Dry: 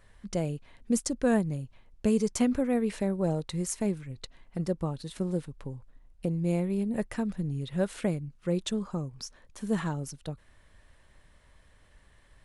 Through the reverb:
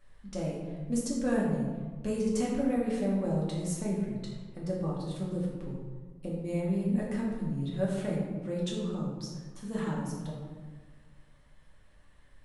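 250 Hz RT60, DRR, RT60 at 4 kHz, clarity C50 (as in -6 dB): 1.9 s, -5.0 dB, 0.80 s, 1.0 dB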